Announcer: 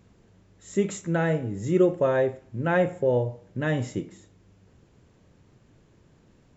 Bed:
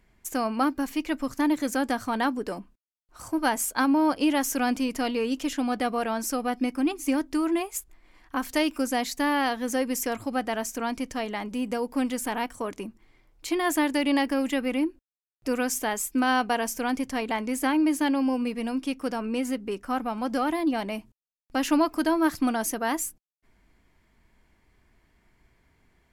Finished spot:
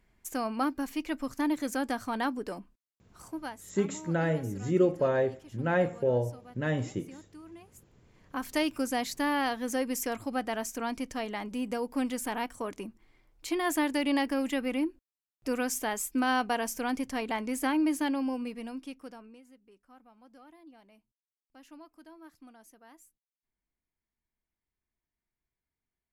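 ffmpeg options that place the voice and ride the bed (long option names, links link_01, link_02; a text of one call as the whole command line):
ffmpeg -i stem1.wav -i stem2.wav -filter_complex "[0:a]adelay=3000,volume=-4dB[link_01];[1:a]volume=14.5dB,afade=type=out:start_time=3.02:duration=0.59:silence=0.11885,afade=type=in:start_time=7.87:duration=0.68:silence=0.105925,afade=type=out:start_time=17.85:duration=1.56:silence=0.0595662[link_02];[link_01][link_02]amix=inputs=2:normalize=0" out.wav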